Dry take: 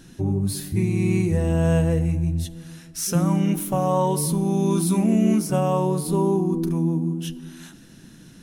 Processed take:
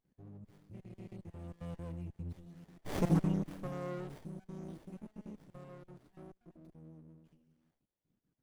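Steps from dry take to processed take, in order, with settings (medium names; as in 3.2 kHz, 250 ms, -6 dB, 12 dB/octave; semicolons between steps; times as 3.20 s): random holes in the spectrogram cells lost 30%; Doppler pass-by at 3.01 s, 12 m/s, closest 1.6 m; sliding maximum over 33 samples; trim -2.5 dB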